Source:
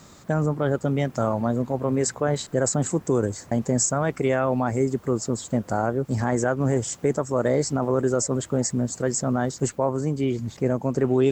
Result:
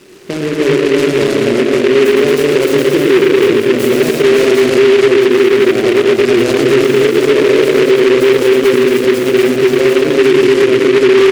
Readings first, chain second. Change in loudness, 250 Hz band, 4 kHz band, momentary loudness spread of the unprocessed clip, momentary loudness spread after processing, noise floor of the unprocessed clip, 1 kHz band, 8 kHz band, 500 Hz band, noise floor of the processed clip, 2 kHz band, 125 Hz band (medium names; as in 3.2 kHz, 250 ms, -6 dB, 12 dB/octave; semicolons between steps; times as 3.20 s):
+14.5 dB, +12.5 dB, +21.0 dB, 4 LU, 3 LU, -49 dBFS, +7.0 dB, +1.0 dB, +17.0 dB, -16 dBFS, +19.0 dB, +0.5 dB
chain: backward echo that repeats 110 ms, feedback 47%, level -7 dB; hard clipper -15.5 dBFS, distortion -17 dB; two resonant band-passes 1 kHz, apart 2.8 oct; wavefolder -19.5 dBFS; on a send: multi-tap echo 111/227/314/564/750 ms -4/-3.5/-3.5/-7.5/-5 dB; on the sum: loudness maximiser +22.5 dB; delay time shaken by noise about 1.9 kHz, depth 0.094 ms; trim -1 dB